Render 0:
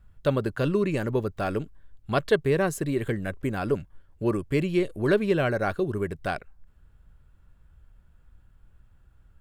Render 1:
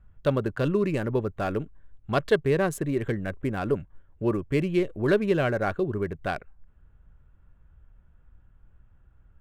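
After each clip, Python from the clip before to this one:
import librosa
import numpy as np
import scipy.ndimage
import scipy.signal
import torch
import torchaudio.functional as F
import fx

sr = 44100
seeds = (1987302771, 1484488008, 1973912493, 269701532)

y = fx.wiener(x, sr, points=9)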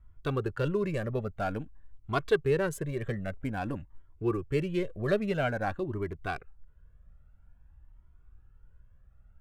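y = fx.comb_cascade(x, sr, direction='rising', hz=0.5)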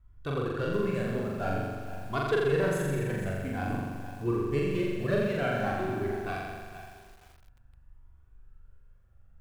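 y = fx.room_flutter(x, sr, wall_m=7.3, rt60_s=1.5)
y = fx.echo_crushed(y, sr, ms=467, feedback_pct=35, bits=7, wet_db=-12.0)
y = y * 10.0 ** (-3.5 / 20.0)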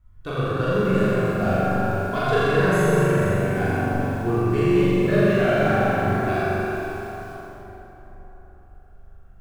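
y = fx.rev_plate(x, sr, seeds[0], rt60_s=3.9, hf_ratio=0.5, predelay_ms=0, drr_db=-7.0)
y = y * 10.0 ** (2.0 / 20.0)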